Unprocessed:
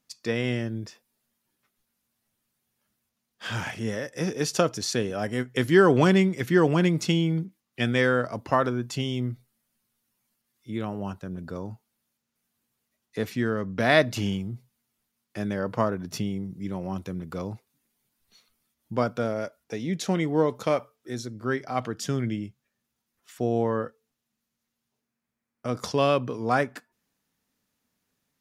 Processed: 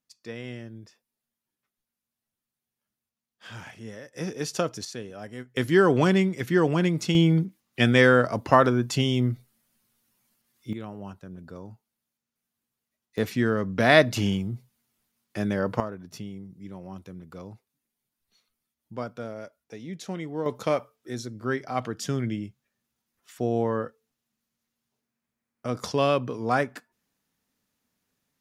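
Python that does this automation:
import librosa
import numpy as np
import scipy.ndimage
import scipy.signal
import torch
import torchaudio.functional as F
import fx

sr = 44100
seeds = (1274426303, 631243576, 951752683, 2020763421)

y = fx.gain(x, sr, db=fx.steps((0.0, -10.5), (4.14, -4.0), (4.85, -10.5), (5.57, -1.5), (7.15, 5.0), (10.73, -6.5), (13.18, 2.5), (15.8, -8.5), (20.46, -0.5)))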